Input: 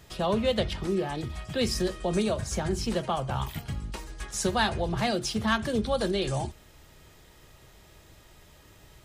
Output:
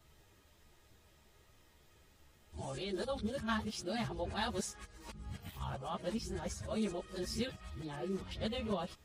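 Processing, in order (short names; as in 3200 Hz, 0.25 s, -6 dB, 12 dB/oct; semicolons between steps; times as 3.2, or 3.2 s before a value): whole clip reversed; ensemble effect; gain -8 dB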